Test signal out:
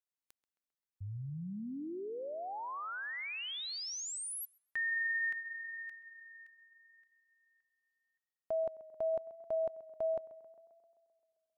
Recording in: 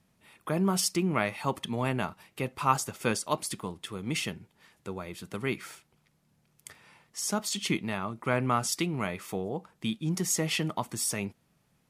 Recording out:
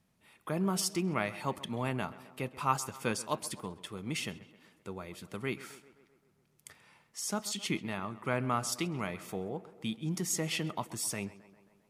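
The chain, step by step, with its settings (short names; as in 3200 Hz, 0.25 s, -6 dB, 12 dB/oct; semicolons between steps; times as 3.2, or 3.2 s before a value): tape echo 0.132 s, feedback 68%, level -16.5 dB, low-pass 2900 Hz; gain -4.5 dB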